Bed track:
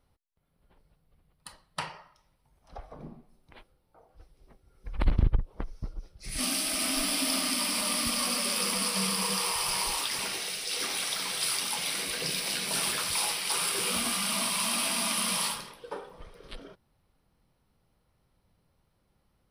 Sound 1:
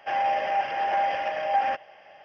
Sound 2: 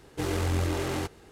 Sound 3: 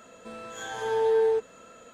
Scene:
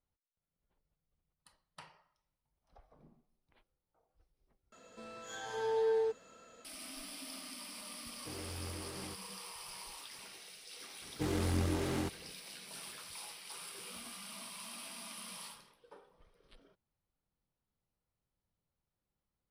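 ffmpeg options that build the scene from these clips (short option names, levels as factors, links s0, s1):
-filter_complex "[2:a]asplit=2[s0][s1];[0:a]volume=0.119[s2];[3:a]equalizer=f=4800:t=o:w=0.57:g=7.5[s3];[s0]highpass=55[s4];[s1]equalizer=f=210:t=o:w=1:g=8.5[s5];[s2]asplit=2[s6][s7];[s6]atrim=end=4.724[s8];[s3]atrim=end=1.93,asetpts=PTS-STARTPTS,volume=0.376[s9];[s7]atrim=start=6.646[s10];[s4]atrim=end=1.31,asetpts=PTS-STARTPTS,volume=0.141,afade=t=in:d=0.004:c=hsin,afade=t=out:st=1.306:d=0.004:c=hsin,adelay=8080[s11];[s5]atrim=end=1.31,asetpts=PTS-STARTPTS,volume=0.422,afade=t=in:d=0.004:c=hsin,afade=t=out:st=1.306:d=0.004:c=hsin,adelay=11020[s12];[s8][s9]acrossfade=d=0.004:c1=hsin:c2=hsin[s13];[s13][s10]acrossfade=d=0.004:c1=hsin:c2=hsin[s14];[s14][s11][s12]amix=inputs=3:normalize=0"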